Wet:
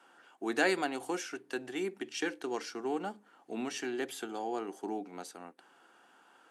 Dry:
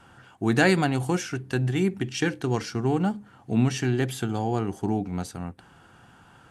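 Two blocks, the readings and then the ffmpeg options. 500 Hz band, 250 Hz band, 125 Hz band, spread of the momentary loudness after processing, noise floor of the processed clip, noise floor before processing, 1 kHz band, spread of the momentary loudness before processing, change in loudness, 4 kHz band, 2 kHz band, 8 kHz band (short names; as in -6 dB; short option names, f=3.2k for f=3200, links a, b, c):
-7.5 dB, -12.5 dB, -30.5 dB, 15 LU, -64 dBFS, -54 dBFS, -7.0 dB, 11 LU, -10.0 dB, -7.0 dB, -7.0 dB, -7.0 dB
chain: -af "highpass=f=300:w=0.5412,highpass=f=300:w=1.3066,volume=-7dB"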